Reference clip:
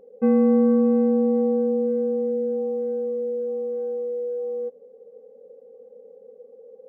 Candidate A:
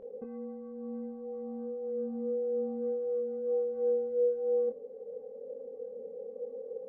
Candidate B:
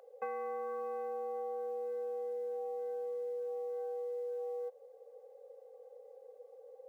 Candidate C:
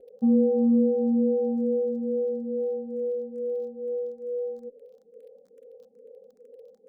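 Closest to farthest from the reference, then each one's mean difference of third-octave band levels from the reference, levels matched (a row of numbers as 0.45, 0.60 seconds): C, A, B; 2.0, 3.5, 6.5 decibels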